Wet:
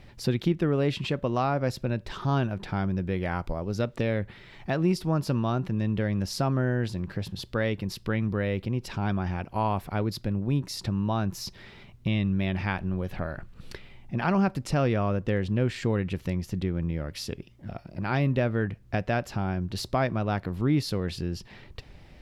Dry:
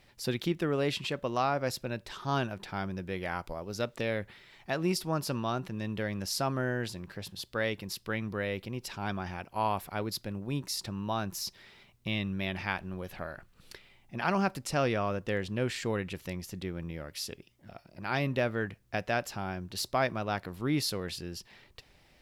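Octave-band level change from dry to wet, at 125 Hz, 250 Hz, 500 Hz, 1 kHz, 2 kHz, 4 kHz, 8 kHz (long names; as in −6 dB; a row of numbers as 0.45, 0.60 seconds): +9.5, +7.0, +3.5, +2.0, +0.5, −1.0, −3.0 decibels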